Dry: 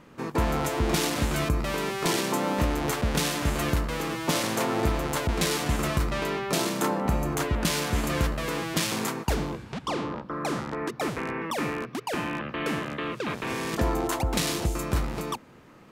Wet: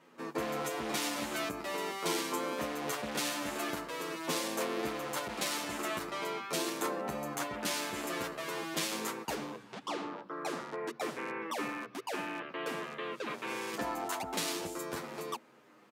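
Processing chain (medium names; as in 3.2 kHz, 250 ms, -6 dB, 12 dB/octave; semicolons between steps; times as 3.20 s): high-pass 290 Hz 12 dB/octave; endless flanger 8.9 ms -0.47 Hz; trim -3.5 dB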